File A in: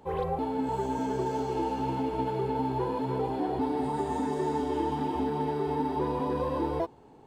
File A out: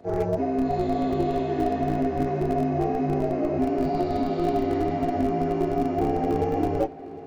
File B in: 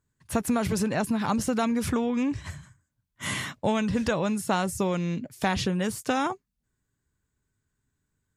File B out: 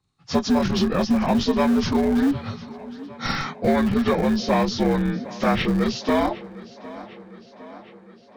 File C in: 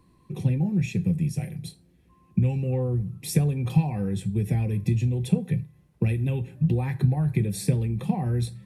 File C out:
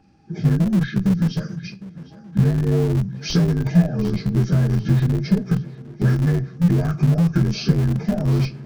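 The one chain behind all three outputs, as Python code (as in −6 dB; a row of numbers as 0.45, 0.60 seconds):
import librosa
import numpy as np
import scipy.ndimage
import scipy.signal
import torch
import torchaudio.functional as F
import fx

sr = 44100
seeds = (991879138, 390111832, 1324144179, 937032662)

p1 = fx.partial_stretch(x, sr, pct=82)
p2 = fx.schmitt(p1, sr, flips_db=-23.5)
p3 = p1 + (p2 * 10.0 ** (-9.0 / 20.0))
p4 = fx.echo_tape(p3, sr, ms=757, feedback_pct=70, wet_db=-16.5, lp_hz=5100.0, drive_db=15.0, wow_cents=21)
y = p4 * 10.0 ** (6.5 / 20.0)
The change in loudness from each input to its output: +5.0, +5.5, +6.0 LU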